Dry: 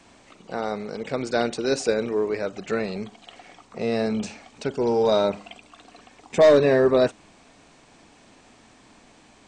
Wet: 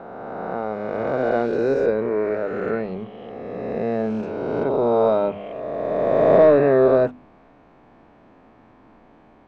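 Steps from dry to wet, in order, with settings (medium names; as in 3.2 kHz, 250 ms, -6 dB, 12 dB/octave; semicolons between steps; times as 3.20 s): reverse spectral sustain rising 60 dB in 2.57 s; low-pass 1.3 kHz 12 dB/octave; hum notches 50/100/150/200/250 Hz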